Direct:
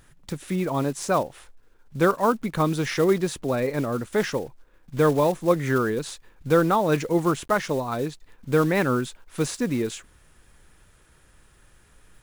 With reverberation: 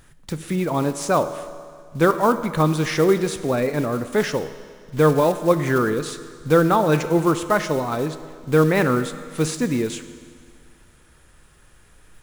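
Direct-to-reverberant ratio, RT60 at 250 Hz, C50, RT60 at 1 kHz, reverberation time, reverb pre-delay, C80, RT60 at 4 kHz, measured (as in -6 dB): 10.5 dB, 2.0 s, 12.0 dB, 2.0 s, 2.0 s, 12 ms, 12.5 dB, 1.9 s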